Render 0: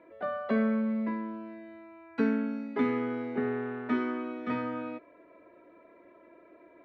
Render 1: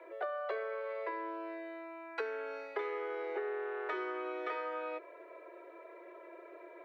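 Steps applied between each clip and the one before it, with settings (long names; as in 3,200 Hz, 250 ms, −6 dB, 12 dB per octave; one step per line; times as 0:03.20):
Butterworth high-pass 340 Hz 96 dB per octave
downward compressor 6 to 1, threshold −41 dBFS, peak gain reduction 12.5 dB
level +5.5 dB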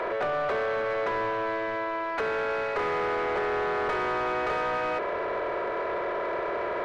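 compressor on every frequency bin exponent 0.4
mid-hump overdrive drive 21 dB, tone 1,400 Hz, clips at −20 dBFS
level +1 dB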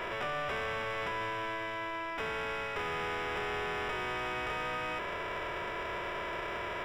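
spectral envelope flattened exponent 0.3
Savitzky-Golay smoothing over 25 samples
level −6.5 dB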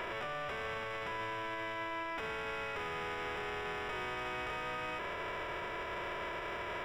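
brickwall limiter −33 dBFS, peak gain reduction 6 dB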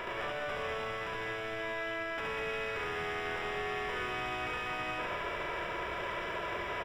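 loudspeakers that aren't time-aligned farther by 24 metres −2 dB, 67 metres −4 dB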